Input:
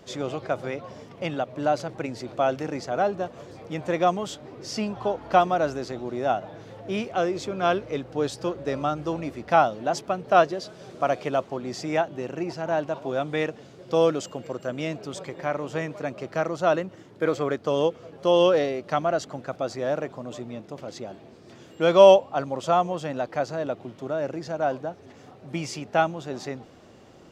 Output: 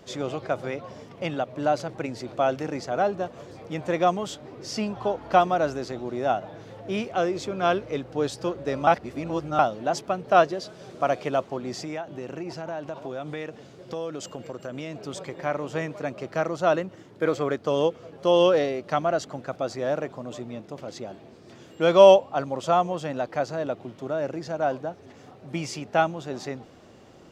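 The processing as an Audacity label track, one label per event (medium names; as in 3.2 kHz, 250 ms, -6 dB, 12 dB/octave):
8.870000	9.590000	reverse
11.760000	15.030000	compression 4:1, threshold -30 dBFS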